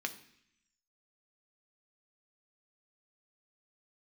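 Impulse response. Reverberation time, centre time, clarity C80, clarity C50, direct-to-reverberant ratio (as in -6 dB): 0.70 s, 7 ms, 16.5 dB, 14.0 dB, 6.0 dB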